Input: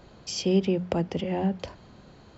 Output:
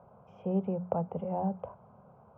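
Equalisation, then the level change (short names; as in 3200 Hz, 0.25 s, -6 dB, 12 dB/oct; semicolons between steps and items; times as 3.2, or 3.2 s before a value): HPF 140 Hz 12 dB/oct; inverse Chebyshev low-pass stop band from 4200 Hz, stop band 50 dB; fixed phaser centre 760 Hz, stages 4; 0.0 dB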